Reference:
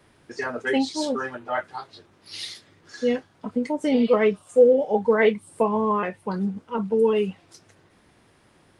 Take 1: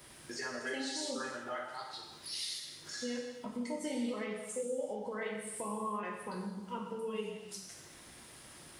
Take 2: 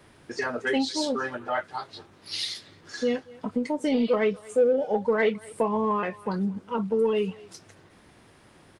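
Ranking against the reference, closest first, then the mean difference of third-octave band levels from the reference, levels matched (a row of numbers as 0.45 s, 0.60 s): 2, 1; 3.0 dB, 10.5 dB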